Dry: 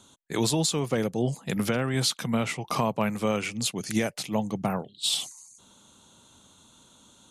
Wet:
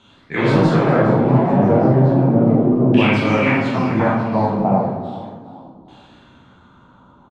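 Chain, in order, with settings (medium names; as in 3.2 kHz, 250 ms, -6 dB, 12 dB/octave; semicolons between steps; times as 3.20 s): ever faster or slower copies 89 ms, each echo +3 st, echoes 3; LFO low-pass saw down 0.34 Hz 320–2700 Hz; frequency-shifting echo 407 ms, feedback 38%, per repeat +35 Hz, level -15 dB; reverberation RT60 1.0 s, pre-delay 12 ms, DRR -5.5 dB; trim +1.5 dB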